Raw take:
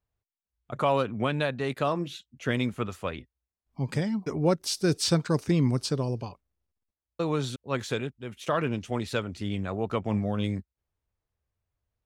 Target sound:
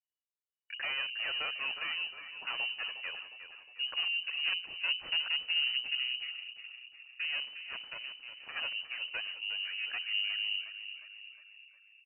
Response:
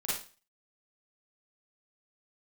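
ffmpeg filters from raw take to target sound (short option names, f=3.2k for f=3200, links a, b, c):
-filter_complex "[0:a]aeval=exprs='(tanh(15.8*val(0)+0.45)-tanh(0.45))/15.8':c=same,bandreject=f=60:t=h:w=6,bandreject=f=120:t=h:w=6,bandreject=f=180:t=h:w=6,bandreject=f=240:t=h:w=6,bandreject=f=300:t=h:w=6,bandreject=f=360:t=h:w=6,bandreject=f=420:t=h:w=6,bandreject=f=480:t=h:w=6,bandreject=f=540:t=h:w=6,acrossover=split=540|1200[a][b][c];[b]acompressor=threshold=-47dB:ratio=6[d];[a][d][c]amix=inputs=3:normalize=0,afwtdn=0.00708,asettb=1/sr,asplit=3[e][f][g];[e]atrim=end=7.404[h];[f]atrim=start=7.4:end=8.56,asetpts=PTS-STARTPTS,afade=t=in:d=0.004:c=qsin,afade=t=out:st=1.156:d=0.004:c=qsin,aeval=exprs='max(val(0),0)':c=same[i];[g]atrim=start=8.556[j];[h][i]acrossfade=d=0.004:c1=hsin:c2=qsin[k];[k][j]acrossfade=d=0.004:c1=qsin:c2=hsin,asplit=7[l][m][n][o][p][q][r];[m]adelay=359,afreqshift=31,volume=-11dB[s];[n]adelay=718,afreqshift=62,volume=-16.5dB[t];[o]adelay=1077,afreqshift=93,volume=-22dB[u];[p]adelay=1436,afreqshift=124,volume=-27.5dB[v];[q]adelay=1795,afreqshift=155,volume=-33.1dB[w];[r]adelay=2154,afreqshift=186,volume=-38.6dB[x];[l][s][t][u][v][w][x]amix=inputs=7:normalize=0,lowpass=f=2.6k:t=q:w=0.5098,lowpass=f=2.6k:t=q:w=0.6013,lowpass=f=2.6k:t=q:w=0.9,lowpass=f=2.6k:t=q:w=2.563,afreqshift=-3000,volume=-2.5dB"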